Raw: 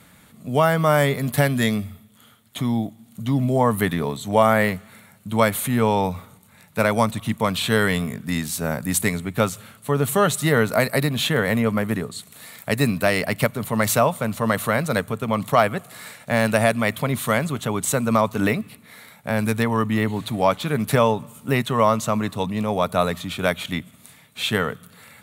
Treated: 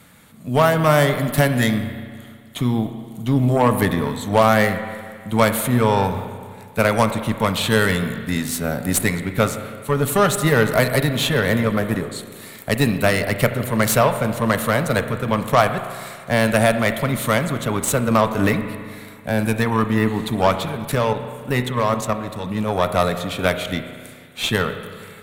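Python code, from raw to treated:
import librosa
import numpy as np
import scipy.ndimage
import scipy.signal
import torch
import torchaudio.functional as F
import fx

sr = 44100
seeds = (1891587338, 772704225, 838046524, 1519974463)

y = fx.cheby_harmonics(x, sr, harmonics=(8,), levels_db=(-22,), full_scale_db=-2.5)
y = fx.level_steps(y, sr, step_db=10, at=(20.65, 22.51))
y = fx.rev_spring(y, sr, rt60_s=2.0, pass_ms=(32, 40), chirp_ms=30, drr_db=8.5)
y = y * 10.0 ** (1.5 / 20.0)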